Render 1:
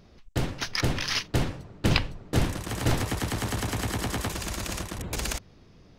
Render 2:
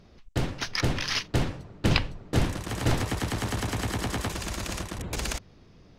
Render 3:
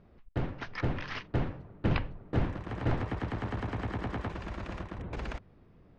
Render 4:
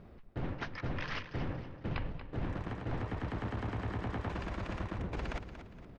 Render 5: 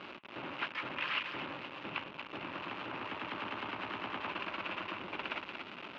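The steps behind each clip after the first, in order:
high-shelf EQ 12,000 Hz −8.5 dB
low-pass filter 1,900 Hz 12 dB per octave; level −4.5 dB
reversed playback; downward compressor 6 to 1, threshold −40 dBFS, peak gain reduction 16.5 dB; reversed playback; repeating echo 234 ms, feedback 38%, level −11 dB; level +5.5 dB
converter with a step at zero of −37.5 dBFS; loudspeaker in its box 470–3,400 Hz, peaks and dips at 470 Hz −10 dB, 720 Hz −8 dB, 1,800 Hz −6 dB, 2,700 Hz +7 dB; level +3 dB

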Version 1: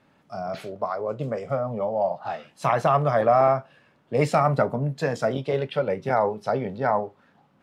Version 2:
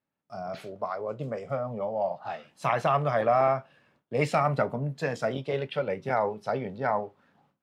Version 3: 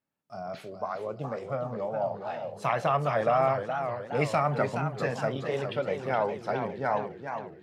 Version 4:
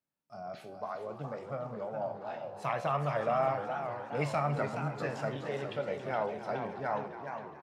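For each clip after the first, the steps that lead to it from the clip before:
noise gate with hold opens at −51 dBFS; dynamic equaliser 2,600 Hz, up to +6 dB, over −40 dBFS, Q 1.1; level −5 dB
feedback echo with a swinging delay time 415 ms, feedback 52%, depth 186 cents, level −7.5 dB; level −1.5 dB
tuned comb filter 72 Hz, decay 0.55 s, harmonics all, mix 60%; echo with shifted repeats 278 ms, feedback 55%, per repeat +79 Hz, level −14 dB

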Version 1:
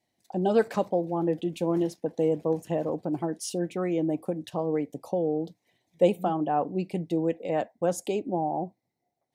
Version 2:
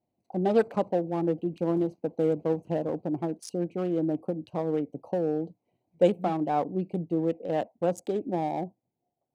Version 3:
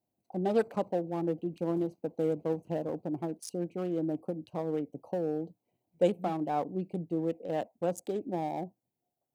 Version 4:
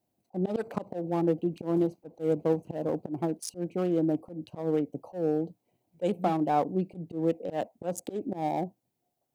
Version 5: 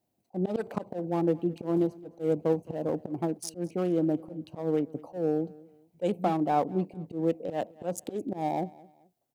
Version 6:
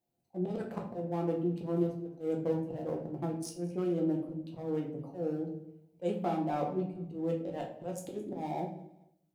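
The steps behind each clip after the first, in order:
adaptive Wiener filter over 25 samples
high-shelf EQ 8,900 Hz +11 dB; level −4.5 dB
volume swells 131 ms; level +5.5 dB
repeating echo 216 ms, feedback 32%, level −22 dB
rectangular room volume 82 cubic metres, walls mixed, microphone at 0.8 metres; level −8.5 dB

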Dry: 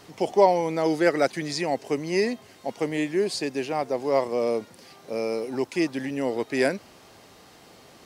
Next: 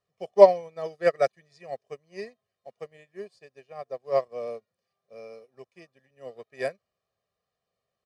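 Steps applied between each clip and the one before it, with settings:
high-shelf EQ 5,400 Hz −8 dB
comb filter 1.7 ms, depth 88%
expander for the loud parts 2.5 to 1, over −35 dBFS
level +3 dB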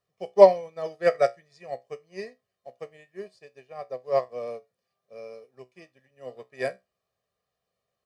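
tuned comb filter 63 Hz, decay 0.2 s, harmonics all, mix 60%
level +4.5 dB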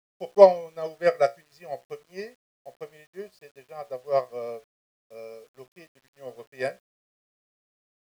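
bit-depth reduction 10 bits, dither none

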